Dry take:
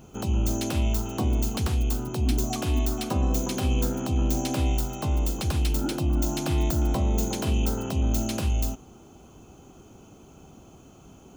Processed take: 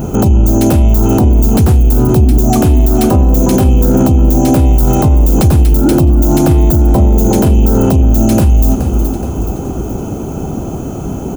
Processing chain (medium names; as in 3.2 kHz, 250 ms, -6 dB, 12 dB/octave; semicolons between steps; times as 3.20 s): band-stop 1.1 kHz, Q 15; in parallel at -11.5 dB: hard clipper -26 dBFS, distortion -9 dB; on the sum: peaking EQ 3.5 kHz -14.5 dB 2.6 oct; on a send: feedback delay 423 ms, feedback 50%, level -20.5 dB; on the sum: loudness maximiser +30 dB; trim -1 dB